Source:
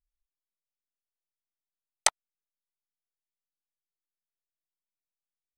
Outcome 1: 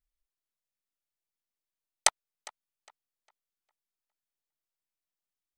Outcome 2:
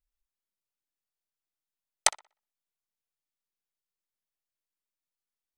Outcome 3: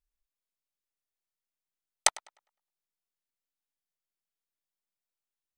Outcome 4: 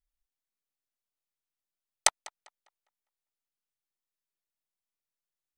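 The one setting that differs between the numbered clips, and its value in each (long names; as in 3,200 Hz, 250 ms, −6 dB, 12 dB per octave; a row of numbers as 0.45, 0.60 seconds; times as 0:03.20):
tape delay, delay time: 406, 63, 103, 200 milliseconds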